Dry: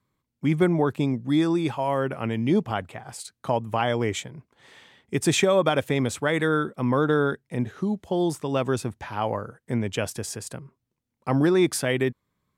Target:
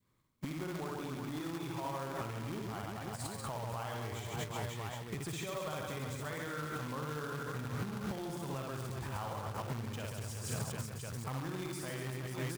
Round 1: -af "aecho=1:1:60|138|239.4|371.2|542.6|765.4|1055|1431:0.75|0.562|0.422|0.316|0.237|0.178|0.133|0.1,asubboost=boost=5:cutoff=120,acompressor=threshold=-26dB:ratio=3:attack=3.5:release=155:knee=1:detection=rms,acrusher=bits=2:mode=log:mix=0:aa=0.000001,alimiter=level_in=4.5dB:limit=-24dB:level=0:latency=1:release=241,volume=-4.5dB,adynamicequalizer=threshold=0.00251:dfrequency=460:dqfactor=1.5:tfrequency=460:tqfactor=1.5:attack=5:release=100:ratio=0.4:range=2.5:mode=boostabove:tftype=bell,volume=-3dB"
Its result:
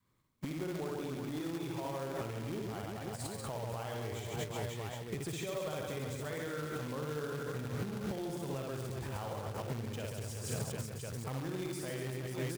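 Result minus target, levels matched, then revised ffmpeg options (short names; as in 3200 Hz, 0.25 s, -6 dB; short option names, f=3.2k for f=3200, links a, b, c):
1000 Hz band -3.5 dB
-af "aecho=1:1:60|138|239.4|371.2|542.6|765.4|1055|1431:0.75|0.562|0.422|0.316|0.237|0.178|0.133|0.1,asubboost=boost=5:cutoff=120,acompressor=threshold=-26dB:ratio=3:attack=3.5:release=155:knee=1:detection=rms,acrusher=bits=2:mode=log:mix=0:aa=0.000001,alimiter=level_in=4.5dB:limit=-24dB:level=0:latency=1:release=241,volume=-4.5dB,adynamicequalizer=threshold=0.00251:dfrequency=1100:dqfactor=1.5:tfrequency=1100:tqfactor=1.5:attack=5:release=100:ratio=0.4:range=2.5:mode=boostabove:tftype=bell,volume=-3dB"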